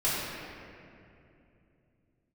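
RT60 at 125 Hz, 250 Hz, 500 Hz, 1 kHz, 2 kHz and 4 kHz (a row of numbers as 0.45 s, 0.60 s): 4.2 s, 3.7 s, 3.1 s, 2.4 s, 2.3 s, 1.5 s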